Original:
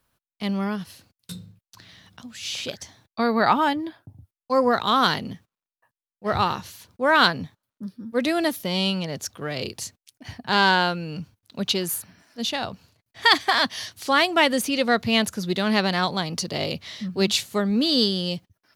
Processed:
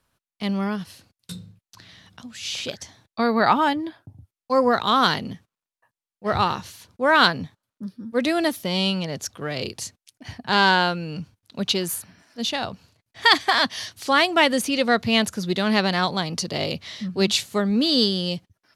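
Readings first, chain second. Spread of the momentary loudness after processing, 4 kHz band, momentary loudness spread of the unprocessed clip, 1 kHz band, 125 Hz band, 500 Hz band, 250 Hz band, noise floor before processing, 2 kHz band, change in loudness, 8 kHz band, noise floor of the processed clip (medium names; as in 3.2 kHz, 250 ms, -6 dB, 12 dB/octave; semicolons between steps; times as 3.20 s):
18 LU, +1.0 dB, 19 LU, +1.0 dB, +1.0 dB, +1.0 dB, +1.0 dB, under -85 dBFS, +1.0 dB, +1.0 dB, +0.5 dB, under -85 dBFS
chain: low-pass 12 kHz 12 dB/octave; trim +1 dB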